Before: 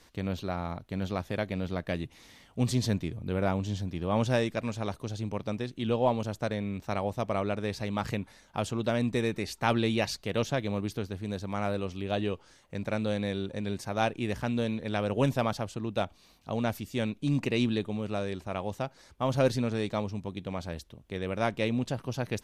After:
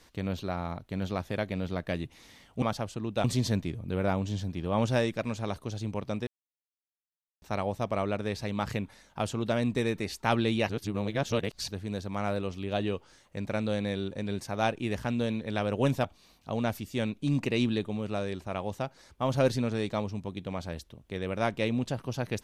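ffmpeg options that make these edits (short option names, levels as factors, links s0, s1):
-filter_complex "[0:a]asplit=8[s0][s1][s2][s3][s4][s5][s6][s7];[s0]atrim=end=2.622[s8];[s1]atrim=start=15.418:end=16.042[s9];[s2]atrim=start=2.618:end=5.65,asetpts=PTS-STARTPTS,afade=t=out:st=3.028:d=0.004:c=hsin[s10];[s3]atrim=start=5.65:end=6.8,asetpts=PTS-STARTPTS,volume=0[s11];[s4]atrim=start=6.8:end=10.072,asetpts=PTS-STARTPTS,afade=t=in:d=0.004:c=hsin[s12];[s5]atrim=start=10.068:end=11.062,asetpts=PTS-STARTPTS,areverse[s13];[s6]atrim=start=11.058:end=15.422[s14];[s7]atrim=start=16.038[s15];[s8][s9]acrossfade=d=0.004:c1=hsin:c2=hsin[s16];[s10][s11][s12]concat=n=3:v=0:a=1[s17];[s16][s17]acrossfade=d=0.004:c1=hsin:c2=hsin[s18];[s18][s13]acrossfade=d=0.004:c1=hsin:c2=hsin[s19];[s19][s14]acrossfade=d=0.004:c1=hsin:c2=hsin[s20];[s20][s15]acrossfade=d=0.004:c1=hsin:c2=hsin"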